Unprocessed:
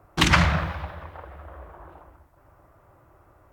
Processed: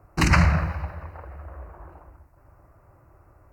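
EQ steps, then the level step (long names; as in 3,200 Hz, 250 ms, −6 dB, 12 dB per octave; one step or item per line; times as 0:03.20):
Butterworth band-reject 3,400 Hz, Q 2.5
low-shelf EQ 160 Hz +7.5 dB
−2.0 dB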